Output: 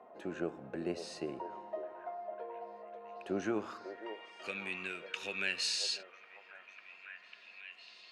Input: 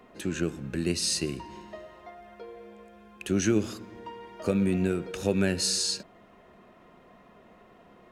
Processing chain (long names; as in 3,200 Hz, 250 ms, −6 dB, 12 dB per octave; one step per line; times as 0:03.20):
band-pass filter sweep 720 Hz → 2,600 Hz, 0:03.40–0:04.25
echo through a band-pass that steps 548 ms, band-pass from 580 Hz, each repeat 0.7 octaves, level −5 dB
level +4.5 dB